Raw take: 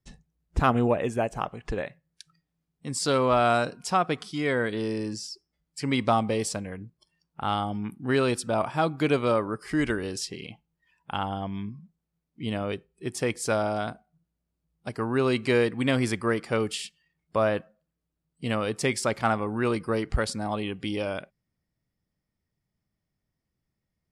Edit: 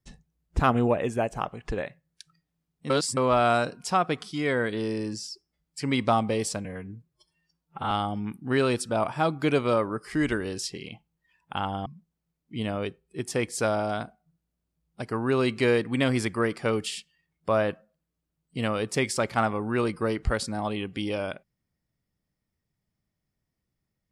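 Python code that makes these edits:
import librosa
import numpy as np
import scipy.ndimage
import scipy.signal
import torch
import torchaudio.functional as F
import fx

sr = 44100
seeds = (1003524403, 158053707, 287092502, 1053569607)

y = fx.edit(x, sr, fx.reverse_span(start_s=2.9, length_s=0.27),
    fx.stretch_span(start_s=6.65, length_s=0.84, factor=1.5),
    fx.cut(start_s=11.44, length_s=0.29), tone=tone)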